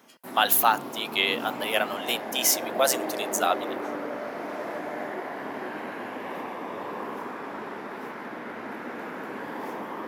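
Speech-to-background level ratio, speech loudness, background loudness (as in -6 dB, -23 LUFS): 9.5 dB, -25.0 LUFS, -34.5 LUFS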